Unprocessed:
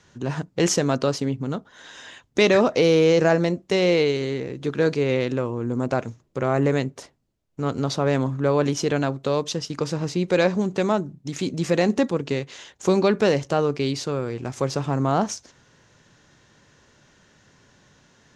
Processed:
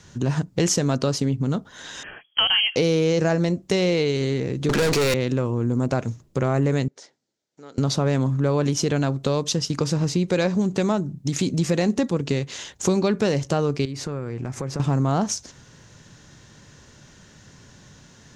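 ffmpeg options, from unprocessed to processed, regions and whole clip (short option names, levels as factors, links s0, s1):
-filter_complex "[0:a]asettb=1/sr,asplit=3[s0][s1][s2];[s0]atrim=end=2.034[s3];[s1]atrim=start=2.03:end=2.76,asetpts=PTS-STARTPTS,afade=t=in:d=0.004:c=qsin,afade=t=out:st=0.726:d=0.004:c=qsin,lowshelf=f=170:g=-6,lowpass=f=2900:t=q:w=0.5098,lowpass=f=2900:t=q:w=0.6013,lowpass=f=2900:t=q:w=0.9,lowpass=f=2900:t=q:w=2.563,afreqshift=-3400[s4];[s2]atrim=start=2.756[s5];[s3][s4]acrossfade=d=0.004:c1=hsin:c2=qsin[s6];[s6][s5]acrossfade=d=0.004:c1=qsin:c2=hsin,asettb=1/sr,asplit=3[s7][s8][s9];[s7]atrim=end=4.694[s10];[s8]atrim=start=4.69:end=5.14,asetpts=PTS-STARTPTS,afade=t=in:d=0.004:c=qsin,afade=t=out:st=0.446:d=0.004:c=qsin,aeval=exprs='if(lt(val(0),0),0.251*val(0),val(0))':c=same,highpass=f=58:w=0.5412,highpass=f=58:w=1.3066,asplit=2[s11][s12];[s12]highpass=f=720:p=1,volume=56.2,asoftclip=type=tanh:threshold=0.299[s13];[s11][s13]amix=inputs=2:normalize=0,lowpass=f=7700:p=1,volume=0.501[s14];[s9]atrim=start=5.136[s15];[s10][s14]acrossfade=d=0.004:c1=hsin:c2=qsin[s16];[s16][s15]acrossfade=d=0.004:c1=qsin:c2=hsin,asettb=1/sr,asplit=3[s17][s18][s19];[s17]atrim=end=6.884[s20];[s18]atrim=start=6.88:end=7.78,asetpts=PTS-STARTPTS,afade=t=in:d=0.004:c=qsin,afade=t=out:st=0.896:d=0.004:c=qsin,acompressor=threshold=0.00316:ratio=2:attack=3.2:release=140:knee=1:detection=peak,highpass=470,equalizer=f=670:t=q:w=4:g=-5,equalizer=f=1100:t=q:w=4:g=-9,equalizer=f=2700:t=q:w=4:g=-6,lowpass=f=6900:w=0.5412,lowpass=f=6900:w=1.3066[s21];[s19]atrim=start=7.776[s22];[s20][s21]acrossfade=d=0.004:c1=hsin:c2=qsin[s23];[s23][s22]acrossfade=d=0.004:c1=qsin:c2=hsin,asettb=1/sr,asplit=3[s24][s25][s26];[s24]atrim=end=13.854[s27];[s25]atrim=start=13.85:end=14.8,asetpts=PTS-STARTPTS,afade=t=in:d=0.004:c=qsin,afade=t=out:st=0.946:d=0.004:c=qsin,highshelf=f=2600:t=q:w=1.5:g=-6,acompressor=threshold=0.0178:ratio=3:attack=3.2:release=140:knee=1:detection=peak[s28];[s26]atrim=start=14.796[s29];[s27][s28]acrossfade=d=0.004:c1=hsin:c2=qsin[s30];[s30][s29]acrossfade=d=0.004:c1=qsin:c2=hsin,bass=f=250:g=7,treble=f=4000:g=6,acompressor=threshold=0.0562:ratio=2.5,volume=1.58"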